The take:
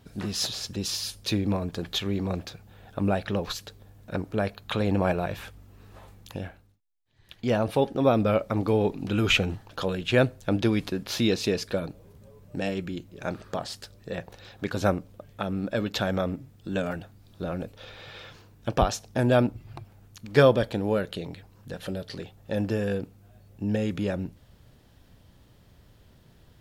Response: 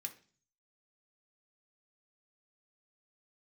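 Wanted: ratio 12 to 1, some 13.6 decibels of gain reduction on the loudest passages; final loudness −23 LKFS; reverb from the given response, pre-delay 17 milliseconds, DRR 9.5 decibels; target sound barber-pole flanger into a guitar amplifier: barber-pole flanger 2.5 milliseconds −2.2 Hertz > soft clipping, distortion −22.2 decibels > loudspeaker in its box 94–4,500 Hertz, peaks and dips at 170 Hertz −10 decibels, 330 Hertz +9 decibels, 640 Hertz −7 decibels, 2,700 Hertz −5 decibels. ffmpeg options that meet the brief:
-filter_complex "[0:a]acompressor=threshold=-26dB:ratio=12,asplit=2[link_01][link_02];[1:a]atrim=start_sample=2205,adelay=17[link_03];[link_02][link_03]afir=irnorm=-1:irlink=0,volume=-6.5dB[link_04];[link_01][link_04]amix=inputs=2:normalize=0,asplit=2[link_05][link_06];[link_06]adelay=2.5,afreqshift=-2.2[link_07];[link_05][link_07]amix=inputs=2:normalize=1,asoftclip=threshold=-23dB,highpass=94,equalizer=frequency=170:width_type=q:width=4:gain=-10,equalizer=frequency=330:width_type=q:width=4:gain=9,equalizer=frequency=640:width_type=q:width=4:gain=-7,equalizer=frequency=2700:width_type=q:width=4:gain=-5,lowpass=frequency=4500:width=0.5412,lowpass=frequency=4500:width=1.3066,volume=14.5dB"

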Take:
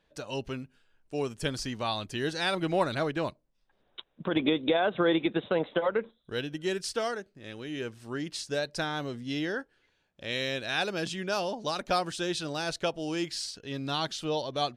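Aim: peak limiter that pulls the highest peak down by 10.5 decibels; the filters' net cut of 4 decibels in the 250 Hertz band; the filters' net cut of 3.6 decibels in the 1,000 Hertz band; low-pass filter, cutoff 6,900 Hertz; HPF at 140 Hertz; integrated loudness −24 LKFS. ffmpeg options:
ffmpeg -i in.wav -af "highpass=140,lowpass=6900,equalizer=frequency=250:width_type=o:gain=-5,equalizer=frequency=1000:width_type=o:gain=-5,volume=12.5dB,alimiter=limit=-12dB:level=0:latency=1" out.wav

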